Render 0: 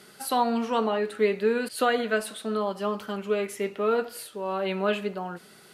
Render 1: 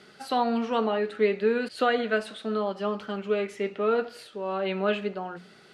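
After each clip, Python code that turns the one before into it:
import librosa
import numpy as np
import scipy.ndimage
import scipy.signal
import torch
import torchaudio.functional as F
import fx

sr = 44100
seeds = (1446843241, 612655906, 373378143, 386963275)

y = scipy.signal.sosfilt(scipy.signal.butter(2, 4800.0, 'lowpass', fs=sr, output='sos'), x)
y = fx.peak_eq(y, sr, hz=1000.0, db=-4.5, octaves=0.21)
y = fx.hum_notches(y, sr, base_hz=60, count=3)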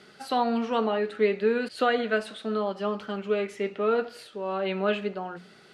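y = x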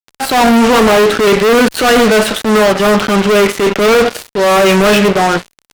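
y = fx.dynamic_eq(x, sr, hz=4700.0, q=1.4, threshold_db=-53.0, ratio=4.0, max_db=-6)
y = fx.fuzz(y, sr, gain_db=40.0, gate_db=-44.0)
y = fx.transient(y, sr, attack_db=-6, sustain_db=0)
y = y * librosa.db_to_amplitude(7.0)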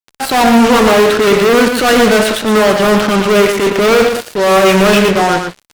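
y = x + 10.0 ** (-6.5 / 20.0) * np.pad(x, (int(116 * sr / 1000.0), 0))[:len(x)]
y = y * librosa.db_to_amplitude(-1.0)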